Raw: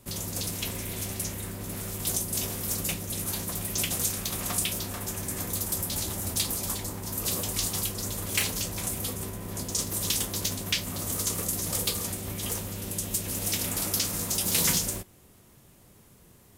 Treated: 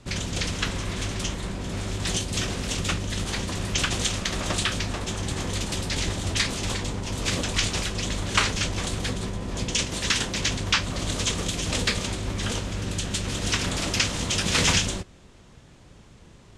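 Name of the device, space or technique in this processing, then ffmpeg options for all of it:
octave pedal: -filter_complex "[0:a]lowpass=frequency=7100:width=0.5412,lowpass=frequency=7100:width=1.3066,asettb=1/sr,asplit=3[link_01][link_02][link_03];[link_01]atrim=end=9.834[link_04];[link_02]atrim=start=9.83:end=10.47,asetpts=PTS-STARTPTS,afade=type=in:duration=0.004:curve=qsin,afade=type=out:start_time=0.636:duration=0.004:curve=qsin,lowshelf=frequency=140:gain=-4.5[link_05];[link_03]atrim=start=10.466[link_06];[link_04][link_05]acrossfade=duration=0.004:curve1=hsin:curve2=qsin[link_07];[link_07][link_06]acrossfade=duration=0.004:curve1=qsin:curve2=hsin,asplit=2[link_08][link_09];[link_09]asetrate=22050,aresample=44100,atempo=2,volume=0dB[link_10];[link_08][link_10]amix=inputs=2:normalize=0,volume=4dB"

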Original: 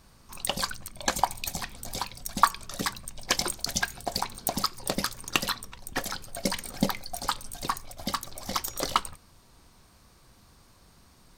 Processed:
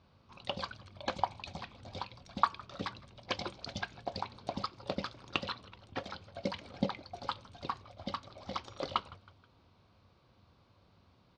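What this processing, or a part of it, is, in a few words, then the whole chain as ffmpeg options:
frequency-shifting delay pedal into a guitar cabinet: -filter_complex "[0:a]asplit=4[link_01][link_02][link_03][link_04];[link_02]adelay=160,afreqshift=87,volume=-22.5dB[link_05];[link_03]adelay=320,afreqshift=174,volume=-28.5dB[link_06];[link_04]adelay=480,afreqshift=261,volume=-34.5dB[link_07];[link_01][link_05][link_06][link_07]amix=inputs=4:normalize=0,highpass=79,equalizer=frequency=94:width_type=q:width=4:gain=10,equalizer=frequency=550:width_type=q:width=4:gain=4,equalizer=frequency=1800:width_type=q:width=4:gain=-7,lowpass=frequency=4000:width=0.5412,lowpass=frequency=4000:width=1.3066,volume=-7dB"

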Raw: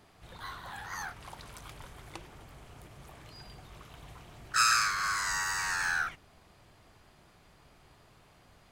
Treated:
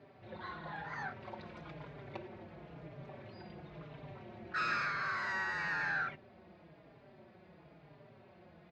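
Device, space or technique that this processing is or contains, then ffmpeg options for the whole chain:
barber-pole flanger into a guitar amplifier: -filter_complex "[0:a]asplit=2[link_01][link_02];[link_02]adelay=4.6,afreqshift=-1[link_03];[link_01][link_03]amix=inputs=2:normalize=1,asoftclip=type=tanh:threshold=-29dB,highpass=100,equalizer=frequency=160:width_type=q:width=4:gain=8,equalizer=frequency=220:width_type=q:width=4:gain=6,equalizer=frequency=360:width_type=q:width=4:gain=8,equalizer=frequency=580:width_type=q:width=4:gain=9,equalizer=frequency=1200:width_type=q:width=4:gain=-5,equalizer=frequency=3100:width_type=q:width=4:gain=-7,lowpass=frequency=3500:width=0.5412,lowpass=frequency=3500:width=1.3066,volume=2dB"

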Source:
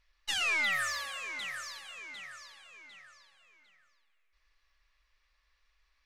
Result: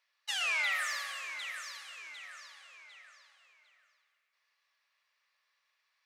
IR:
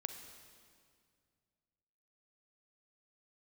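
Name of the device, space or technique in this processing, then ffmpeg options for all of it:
stairwell: -filter_complex "[0:a]asplit=3[link_01][link_02][link_03];[link_01]afade=type=out:start_time=0.72:duration=0.02[link_04];[link_02]asubboost=boost=11.5:cutoff=220,afade=type=in:start_time=0.72:duration=0.02,afade=type=out:start_time=2.22:duration=0.02[link_05];[link_03]afade=type=in:start_time=2.22:duration=0.02[link_06];[link_04][link_05][link_06]amix=inputs=3:normalize=0,highpass=frequency=530:width=0.5412,highpass=frequency=530:width=1.3066[link_07];[1:a]atrim=start_sample=2205[link_08];[link_07][link_08]afir=irnorm=-1:irlink=0"

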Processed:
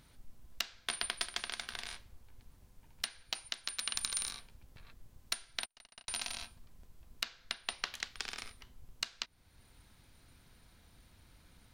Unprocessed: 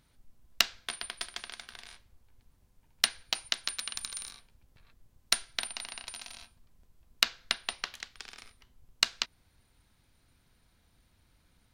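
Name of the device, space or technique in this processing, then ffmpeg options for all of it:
stacked limiters: -filter_complex "[0:a]alimiter=limit=-7.5dB:level=0:latency=1:release=363,alimiter=limit=-13dB:level=0:latency=1:release=434,alimiter=limit=-19dB:level=0:latency=1:release=452,asplit=3[link_01][link_02][link_03];[link_01]afade=type=out:start_time=5.64:duration=0.02[link_04];[link_02]agate=range=-45dB:threshold=-41dB:ratio=16:detection=peak,afade=type=in:start_time=5.64:duration=0.02,afade=type=out:start_time=6.08:duration=0.02[link_05];[link_03]afade=type=in:start_time=6.08:duration=0.02[link_06];[link_04][link_05][link_06]amix=inputs=3:normalize=0,volume=5.5dB"

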